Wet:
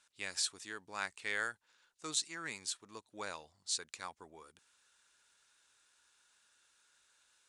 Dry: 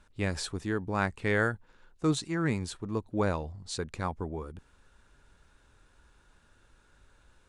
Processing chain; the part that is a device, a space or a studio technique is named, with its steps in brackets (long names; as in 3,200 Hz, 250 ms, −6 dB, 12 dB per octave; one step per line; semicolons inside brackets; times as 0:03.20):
piezo pickup straight into a mixer (low-pass filter 8,200 Hz 12 dB per octave; first difference)
level +6 dB